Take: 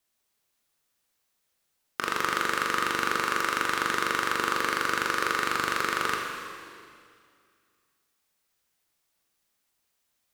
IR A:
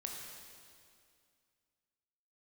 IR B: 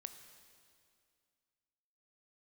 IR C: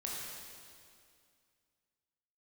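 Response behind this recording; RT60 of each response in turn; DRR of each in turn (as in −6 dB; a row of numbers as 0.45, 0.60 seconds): A; 2.3, 2.3, 2.3 seconds; 0.0, 8.0, −4.5 decibels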